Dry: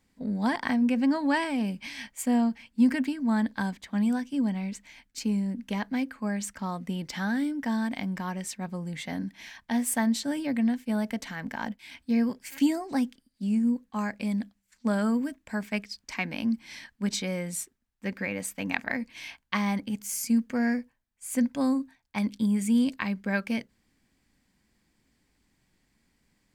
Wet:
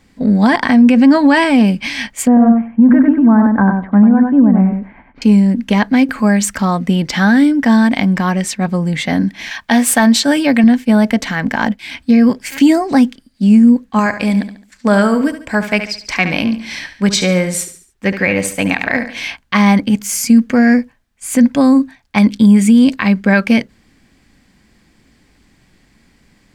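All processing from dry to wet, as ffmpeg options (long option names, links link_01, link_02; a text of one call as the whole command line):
ffmpeg -i in.wav -filter_complex "[0:a]asettb=1/sr,asplit=3[link_01][link_02][link_03];[link_01]atrim=end=2.274[link_04];[link_02]atrim=start=2.27:end=5.22,asetpts=PTS-STARTPTS,afade=type=in:duration=0.004:curve=qsin,afade=type=out:start_time=2.946:duration=0.004:curve=qsin,lowpass=frequency=1400:width=0.5412,lowpass=frequency=1400:width=1.3066,aecho=1:1:96|192|288:0.562|0.09|0.0144,atrim=end_sample=130095[link_05];[link_03]atrim=start=5.216[link_06];[link_04][link_05]acrossfade=duration=0.004:curve1=hsin:curve2=qsin[link_07];[link_07][link_06]acrossfade=duration=0.004:curve1=qsin:curve2=hsin,asettb=1/sr,asplit=3[link_08][link_09][link_10];[link_08]atrim=end=6.094[link_11];[link_09]atrim=start=6.09:end=6.65,asetpts=PTS-STARTPTS,afade=type=in:duration=0.004:curve=qsin,afade=type=out:start_time=0.556:duration=0.004:curve=qsin,highshelf=frequency=9000:gain=9.5,acompressor=mode=upward:threshold=-33dB:ratio=2.5:attack=3.2:release=140:knee=2.83:detection=peak[link_12];[link_10]atrim=start=6.646[link_13];[link_11][link_12]acrossfade=duration=0.004:curve1=hsin:curve2=qsin[link_14];[link_14][link_13]acrossfade=duration=0.004:curve1=qsin:curve2=hsin,asettb=1/sr,asplit=3[link_15][link_16][link_17];[link_15]atrim=end=9.514[link_18];[link_16]atrim=start=9.51:end=10.64,asetpts=PTS-STARTPTS,afade=type=in:duration=0.004:curve=qsin,afade=type=out:start_time=1.126:duration=0.004:curve=qsin,highshelf=frequency=12000:gain=11.5,bandreject=frequency=2000:width=16,asplit=2[link_19][link_20];[link_20]highpass=frequency=720:poles=1,volume=8dB,asoftclip=type=tanh:threshold=-13dB[link_21];[link_19][link_21]amix=inputs=2:normalize=0,lowpass=frequency=5700:poles=1,volume=-6dB[link_22];[link_17]atrim=start=10.636[link_23];[link_18][link_22]acrossfade=duration=0.004:curve1=hsin:curve2=qsin[link_24];[link_24][link_23]acrossfade=duration=0.004:curve1=qsin:curve2=hsin,asettb=1/sr,asplit=3[link_25][link_26][link_27];[link_25]atrim=end=13.994[link_28];[link_26]atrim=start=13.99:end=19.27,asetpts=PTS-STARTPTS,afade=type=in:duration=0.004:curve=qsin,afade=type=out:start_time=5.276:duration=0.004:curve=qsin,equalizer=frequency=230:width=5.1:gain=-9,aecho=1:1:71|142|213|284:0.282|0.113|0.0451|0.018,atrim=end_sample=232848[link_29];[link_27]atrim=start=19.266[link_30];[link_28][link_29]acrossfade=duration=0.004:curve1=hsin:curve2=qsin[link_31];[link_31][link_30]acrossfade=duration=0.004:curve1=qsin:curve2=hsin,highshelf=frequency=8300:gain=-10,bandreject=frequency=930:width=17,alimiter=level_in=19.5dB:limit=-1dB:release=50:level=0:latency=1,volume=-1dB" out.wav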